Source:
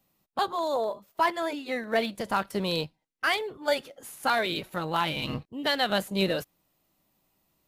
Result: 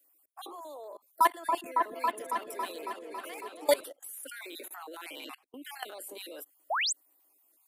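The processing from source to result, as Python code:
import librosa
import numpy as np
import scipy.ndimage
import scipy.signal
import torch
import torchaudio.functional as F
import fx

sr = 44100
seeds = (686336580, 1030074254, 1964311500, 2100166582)

y = fx.spec_dropout(x, sr, seeds[0], share_pct=35)
y = scipy.signal.sosfilt(scipy.signal.butter(12, 270.0, 'highpass', fs=sr, output='sos'), y)
y = fx.high_shelf_res(y, sr, hz=7300.0, db=11.0, q=1.5)
y = fx.level_steps(y, sr, step_db=24)
y = fx.echo_opening(y, sr, ms=276, hz=750, octaves=1, feedback_pct=70, wet_db=0, at=(1.21, 3.84))
y = fx.spec_paint(y, sr, seeds[1], shape='rise', start_s=6.7, length_s=0.23, low_hz=570.0, high_hz=9200.0, level_db=-33.0)
y = y * 10.0 ** (4.0 / 20.0)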